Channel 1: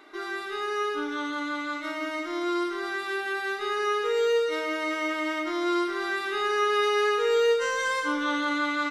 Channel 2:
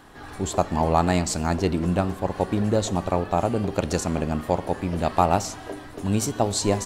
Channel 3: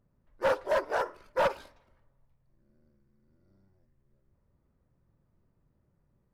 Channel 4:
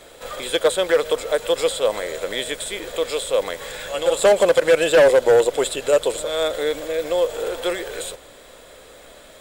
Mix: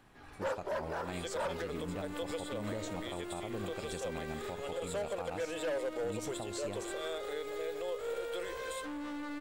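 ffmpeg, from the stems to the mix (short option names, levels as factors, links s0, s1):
-filter_complex "[0:a]tiltshelf=f=1100:g=9.5,alimiter=limit=0.1:level=0:latency=1,aeval=exprs='(tanh(39.8*val(0)+0.25)-tanh(0.25))/39.8':c=same,adelay=800,volume=0.447[s0];[1:a]equalizer=f=2400:w=3.7:g=7,volume=0.188[s1];[2:a]volume=1.33[s2];[3:a]adelay=700,volume=0.168[s3];[s0][s1][s2][s3]amix=inputs=4:normalize=0,alimiter=level_in=1.88:limit=0.0631:level=0:latency=1:release=140,volume=0.531"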